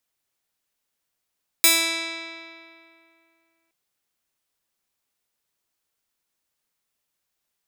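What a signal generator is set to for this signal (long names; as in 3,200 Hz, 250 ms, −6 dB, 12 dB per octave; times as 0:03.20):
Karplus-Strong string E4, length 2.07 s, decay 2.53 s, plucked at 0.22, bright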